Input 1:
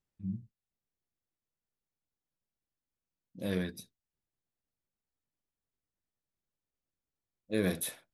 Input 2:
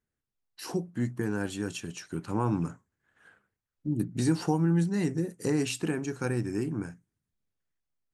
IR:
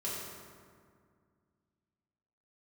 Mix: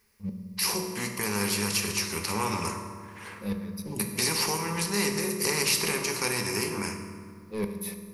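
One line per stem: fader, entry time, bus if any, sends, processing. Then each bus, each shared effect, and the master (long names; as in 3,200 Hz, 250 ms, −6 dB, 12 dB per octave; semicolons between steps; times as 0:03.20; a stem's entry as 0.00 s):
−8.5 dB, 0.00 s, send −7 dB, leveller curve on the samples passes 3; tremolo with a ramp in dB swelling 3.4 Hz, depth 23 dB
−0.5 dB, 0.00 s, send −3.5 dB, tilt shelving filter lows −6.5 dB, about 840 Hz; every bin compressed towards the loudest bin 2 to 1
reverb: on, RT60 2.1 s, pre-delay 3 ms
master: EQ curve with evenly spaced ripples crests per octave 0.86, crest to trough 10 dB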